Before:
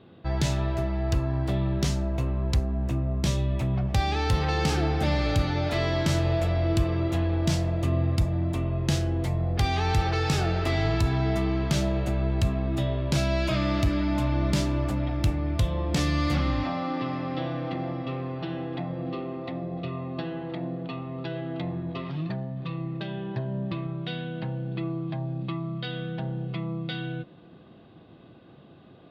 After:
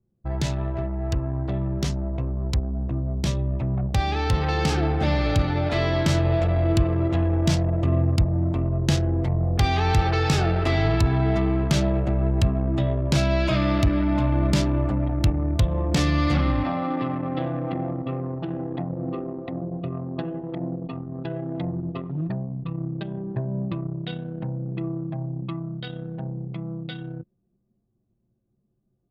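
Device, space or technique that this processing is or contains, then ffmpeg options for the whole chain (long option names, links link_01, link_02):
voice memo with heavy noise removal: -af "anlmdn=25.1,dynaudnorm=framelen=430:gausssize=21:maxgain=4dB"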